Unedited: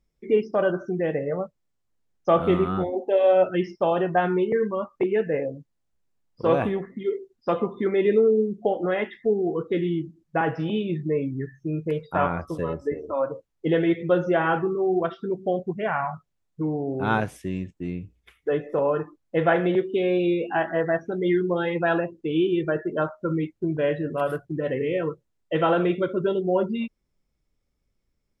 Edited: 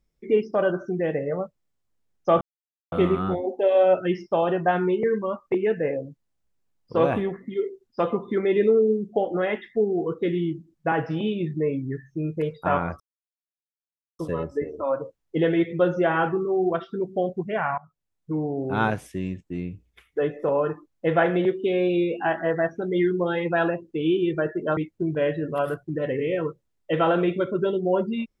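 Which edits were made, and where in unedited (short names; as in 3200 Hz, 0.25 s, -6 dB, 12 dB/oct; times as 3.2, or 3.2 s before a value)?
2.41 insert silence 0.51 s
12.49 insert silence 1.19 s
16.08–16.68 fade in, from -21 dB
23.07–23.39 cut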